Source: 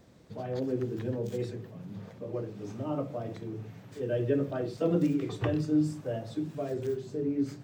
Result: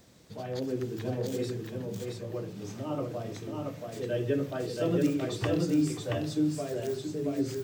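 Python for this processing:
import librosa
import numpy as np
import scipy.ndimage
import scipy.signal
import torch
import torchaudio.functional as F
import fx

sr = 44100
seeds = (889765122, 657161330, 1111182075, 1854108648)

p1 = fx.high_shelf(x, sr, hz=2700.0, db=11.5)
p2 = p1 + fx.echo_single(p1, sr, ms=677, db=-3.0, dry=0)
y = p2 * 10.0 ** (-1.5 / 20.0)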